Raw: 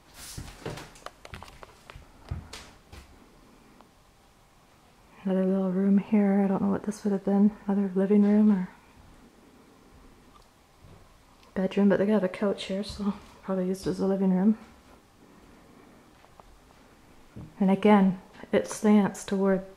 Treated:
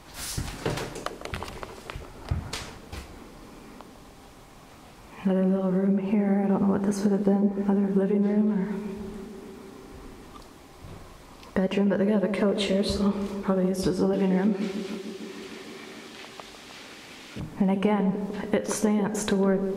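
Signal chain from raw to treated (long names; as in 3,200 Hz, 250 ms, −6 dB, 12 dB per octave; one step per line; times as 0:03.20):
0:14.13–0:17.40: meter weighting curve D
downward compressor 16 to 1, threshold −29 dBFS, peak gain reduction 15 dB
on a send: feedback echo with a band-pass in the loop 150 ms, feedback 84%, band-pass 330 Hz, level −7 dB
on the sum: level +8.5 dB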